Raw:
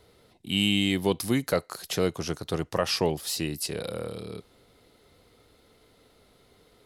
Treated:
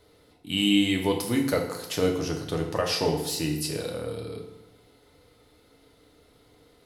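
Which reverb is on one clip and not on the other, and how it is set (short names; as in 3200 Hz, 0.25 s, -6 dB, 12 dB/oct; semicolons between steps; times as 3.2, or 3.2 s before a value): FDN reverb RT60 0.96 s, low-frequency decay 1×, high-frequency decay 0.75×, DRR 1 dB; gain -2 dB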